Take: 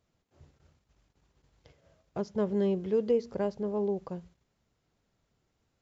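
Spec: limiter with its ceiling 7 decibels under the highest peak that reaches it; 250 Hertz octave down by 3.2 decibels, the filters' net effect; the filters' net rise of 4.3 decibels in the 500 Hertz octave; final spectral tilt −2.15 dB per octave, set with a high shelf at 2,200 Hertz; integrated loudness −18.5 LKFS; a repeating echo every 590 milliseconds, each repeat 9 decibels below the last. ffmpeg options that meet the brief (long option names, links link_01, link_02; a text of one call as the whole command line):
ffmpeg -i in.wav -af "equalizer=frequency=250:width_type=o:gain=-6.5,equalizer=frequency=500:width_type=o:gain=7.5,highshelf=frequency=2200:gain=-6,alimiter=limit=-20.5dB:level=0:latency=1,aecho=1:1:590|1180|1770|2360:0.355|0.124|0.0435|0.0152,volume=12.5dB" out.wav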